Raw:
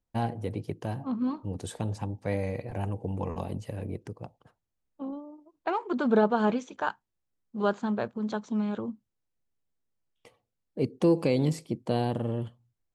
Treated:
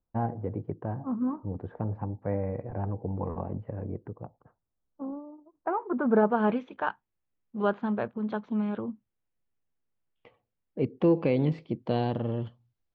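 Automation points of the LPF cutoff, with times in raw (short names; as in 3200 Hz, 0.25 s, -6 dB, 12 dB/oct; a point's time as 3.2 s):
LPF 24 dB/oct
5.9 s 1500 Hz
6.53 s 3000 Hz
11.47 s 3000 Hz
12.39 s 5000 Hz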